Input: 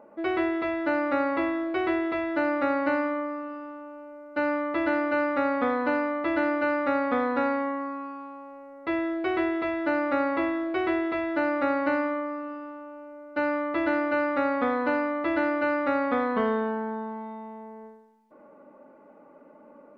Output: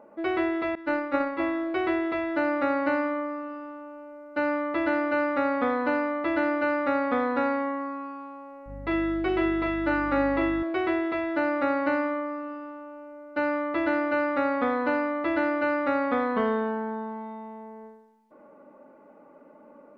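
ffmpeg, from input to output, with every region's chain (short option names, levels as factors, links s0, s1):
-filter_complex "[0:a]asettb=1/sr,asplit=3[s0][s1][s2];[s0]atrim=end=0.754[s3];[s1]atrim=start=0.75:end=1.4,asetpts=PTS-STARTPTS,afade=t=in:d=0.004:c=qsin,afade=t=out:st=0.646:d=0.004:c=qsin,agate=range=0.0224:threshold=0.112:ratio=3:release=100:detection=peak,asuperstop=centerf=710:order=4:qfactor=4.6,acontrast=72[s4];[s2]atrim=start=1.396[s5];[s3][s4]acrossfade=d=0.004:c1=hsin:c2=qsin[s6];[s6][s5]acrossfade=d=0.004:c1=qsin:c2=hsin,asettb=1/sr,asplit=3[s7][s8][s9];[s7]atrim=end=8.664[s10];[s8]atrim=start=8.66:end=10.63,asetpts=PTS-STARTPTS,afade=t=in:d=0.004:c=qsin,afade=t=out:st=1.966:d=0.004:c=qsin,aeval=exprs='val(0)+0.00794*(sin(2*PI*50*n/s)+sin(2*PI*2*50*n/s)/2+sin(2*PI*3*50*n/s)/3+sin(2*PI*4*50*n/s)/4+sin(2*PI*5*50*n/s)/5)':c=same,asplit=2[s11][s12];[s12]adelay=40,volume=0.501[s13];[s11][s13]amix=inputs=2:normalize=0,atrim=end_sample=86877[s14];[s9]atrim=start=10.626[s15];[s10][s14]acrossfade=d=0.004:c1=hsin:c2=qsin[s16];[s16][s15]acrossfade=d=0.004:c1=qsin:c2=hsin"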